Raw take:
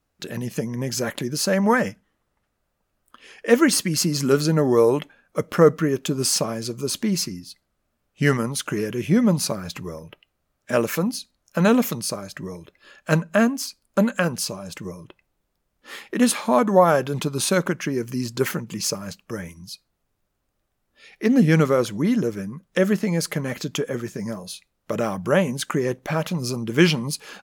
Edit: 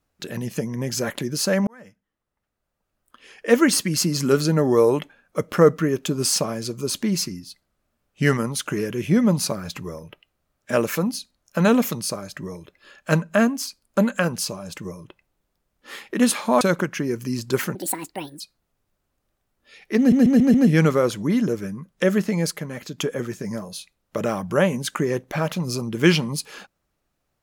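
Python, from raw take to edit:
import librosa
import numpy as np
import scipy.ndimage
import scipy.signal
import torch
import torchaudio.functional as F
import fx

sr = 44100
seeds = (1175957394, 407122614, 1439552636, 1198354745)

y = fx.edit(x, sr, fx.fade_in_span(start_s=1.67, length_s=1.91),
    fx.cut(start_s=16.61, length_s=0.87),
    fx.speed_span(start_s=18.62, length_s=1.09, speed=1.67),
    fx.stutter(start_s=21.29, slice_s=0.14, count=5),
    fx.clip_gain(start_s=23.25, length_s=0.48, db=-5.5), tone=tone)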